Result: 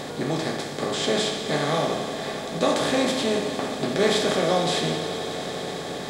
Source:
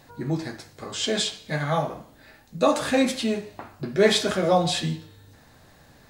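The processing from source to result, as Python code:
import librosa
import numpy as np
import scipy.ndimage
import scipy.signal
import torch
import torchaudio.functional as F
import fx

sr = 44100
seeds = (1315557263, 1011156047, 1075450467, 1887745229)

y = fx.bin_compress(x, sr, power=0.4)
y = fx.echo_swell(y, sr, ms=91, loudest=5, wet_db=-17.5)
y = y * 10.0 ** (-6.0 / 20.0)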